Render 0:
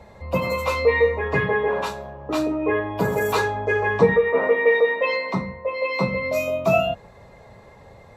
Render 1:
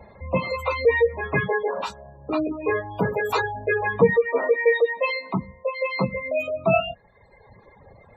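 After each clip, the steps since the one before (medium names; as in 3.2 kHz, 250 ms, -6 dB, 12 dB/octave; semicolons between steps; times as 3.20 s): reverb removal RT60 1.4 s; spectral gate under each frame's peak -25 dB strong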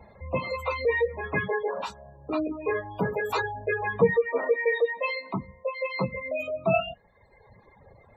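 flange 0.52 Hz, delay 0.8 ms, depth 5.1 ms, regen -71%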